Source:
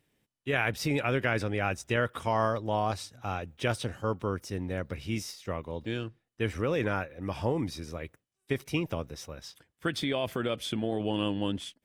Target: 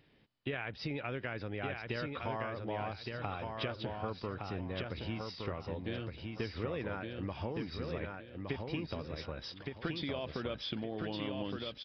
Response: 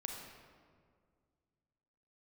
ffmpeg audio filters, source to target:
-filter_complex "[0:a]acompressor=threshold=-44dB:ratio=6,asplit=2[link_01][link_02];[link_02]aecho=0:1:1166|2332|3498|4664:0.631|0.189|0.0568|0.017[link_03];[link_01][link_03]amix=inputs=2:normalize=0,aresample=11025,aresample=44100,volume=7dB"

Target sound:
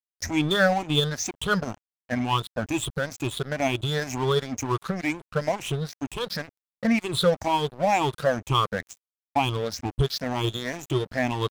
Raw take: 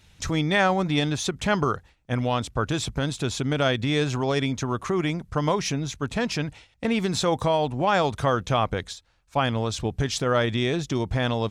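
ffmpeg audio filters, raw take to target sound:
ffmpeg -i in.wav -af "afftfilt=real='re*pow(10,24/40*sin(2*PI*(0.65*log(max(b,1)*sr/1024/100)/log(2)-(2.1)*(pts-256)/sr)))':imag='im*pow(10,24/40*sin(2*PI*(0.65*log(max(b,1)*sr/1024/100)/log(2)-(2.1)*(pts-256)/sr)))':win_size=1024:overlap=0.75,highshelf=frequency=8800:gain=4.5,aeval=exprs='sgn(val(0))*max(abs(val(0))-0.0355,0)':channel_layout=same,volume=-5dB" out.wav

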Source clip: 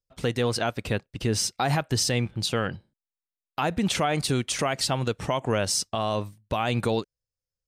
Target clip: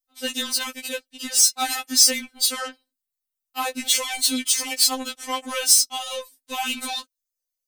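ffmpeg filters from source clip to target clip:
ffmpeg -i in.wav -af "acontrast=45,aeval=exprs='0.376*(cos(1*acos(clip(val(0)/0.376,-1,1)))-cos(1*PI/2))+0.0266*(cos(7*acos(clip(val(0)/0.376,-1,1)))-cos(7*PI/2))':channel_layout=same,crystalizer=i=8.5:c=0,afftfilt=real='re*3.46*eq(mod(b,12),0)':imag='im*3.46*eq(mod(b,12),0)':win_size=2048:overlap=0.75,volume=-9.5dB" out.wav

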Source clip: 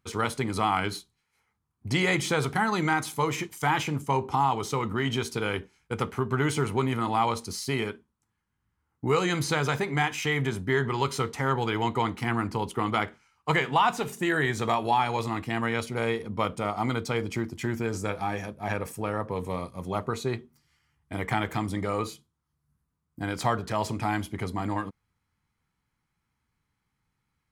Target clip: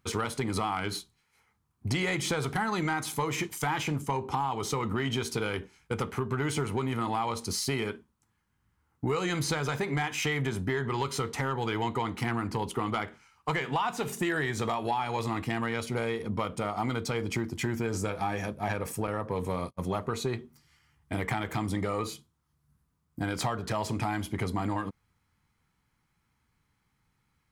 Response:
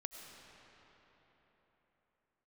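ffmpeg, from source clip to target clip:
-filter_complex "[0:a]asettb=1/sr,asplit=3[link_01][link_02][link_03];[link_01]atrim=end=19.074[link_04];[link_02]atrim=start=19.07:end=19.81,asetpts=PTS-STARTPTS,afade=type=in:duration=0.004:curve=qsin,afade=type=out:start_time=0.736:duration=0.004:curve=qsin,agate=range=-45dB:threshold=-36dB:ratio=16:detection=peak[link_05];[link_03]atrim=start=19.806[link_06];[link_04][link_05]acrossfade=duration=0.004:curve1=hsin:curve2=qsin[link_07];[link_07][link_06]acrossfade=duration=0.004:curve1=qsin:curve2=hsin,acompressor=threshold=-30dB:ratio=6,asoftclip=type=tanh:threshold=-22.5dB,volume=4.5dB"

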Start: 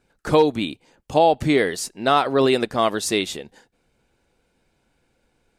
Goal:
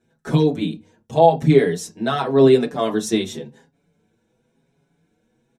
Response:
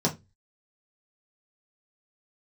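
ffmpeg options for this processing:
-filter_complex "[0:a]asplit=2[link_01][link_02];[1:a]atrim=start_sample=2205,lowshelf=frequency=120:gain=6[link_03];[link_02][link_03]afir=irnorm=-1:irlink=0,volume=-10.5dB[link_04];[link_01][link_04]amix=inputs=2:normalize=0,asplit=2[link_05][link_06];[link_06]adelay=5.9,afreqshift=0.92[link_07];[link_05][link_07]amix=inputs=2:normalize=1,volume=-4dB"

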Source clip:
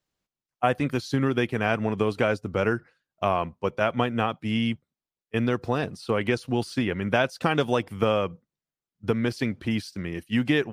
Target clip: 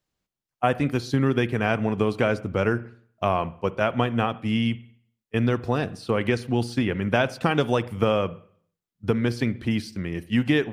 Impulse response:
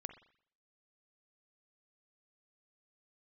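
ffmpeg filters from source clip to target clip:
-filter_complex "[0:a]asplit=2[link_01][link_02];[1:a]atrim=start_sample=2205,lowshelf=frequency=270:gain=8[link_03];[link_02][link_03]afir=irnorm=-1:irlink=0,volume=-0.5dB[link_04];[link_01][link_04]amix=inputs=2:normalize=0,volume=-3.5dB"

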